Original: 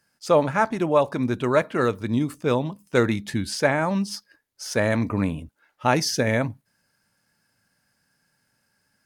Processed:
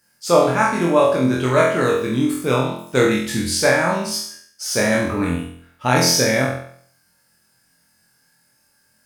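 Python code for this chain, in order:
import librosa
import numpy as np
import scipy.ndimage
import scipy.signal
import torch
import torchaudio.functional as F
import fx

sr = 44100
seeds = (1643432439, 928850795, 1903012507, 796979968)

y = fx.spec_trails(x, sr, decay_s=0.37)
y = fx.high_shelf(y, sr, hz=6100.0, db=9.5)
y = fx.room_flutter(y, sr, wall_m=4.0, rt60_s=0.58)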